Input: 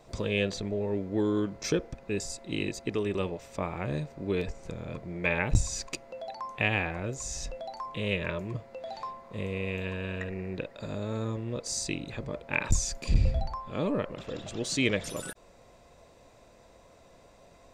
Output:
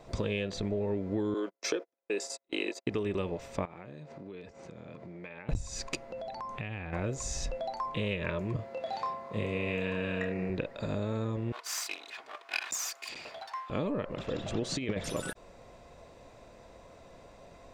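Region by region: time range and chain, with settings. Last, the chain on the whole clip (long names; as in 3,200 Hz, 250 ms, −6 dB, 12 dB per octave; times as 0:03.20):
0:01.34–0:02.87: high-pass filter 330 Hz 24 dB per octave + noise gate −41 dBFS, range −42 dB
0:03.65–0:05.49: downward compressor 16 to 1, threshold −43 dBFS + band-pass filter 150–7,500 Hz
0:06.10–0:06.93: bass and treble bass +7 dB, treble 0 dB + downward compressor 4 to 1, threshold −40 dBFS
0:08.56–0:10.50: high-pass filter 95 Hz + double-tracking delay 28 ms −4.5 dB
0:11.52–0:13.70: lower of the sound and its delayed copy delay 2.8 ms + high-pass filter 1,100 Hz
0:14.49–0:14.98: high-shelf EQ 3,600 Hz −8.5 dB + compressor whose output falls as the input rises −31 dBFS, ratio −0.5
whole clip: high-shelf EQ 5,900 Hz −8 dB; downward compressor 16 to 1, threshold −31 dBFS; level +3.5 dB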